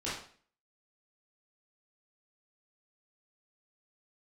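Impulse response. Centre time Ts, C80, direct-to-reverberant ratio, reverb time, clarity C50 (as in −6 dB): 50 ms, 7.5 dB, −10.0 dB, 0.45 s, 2.0 dB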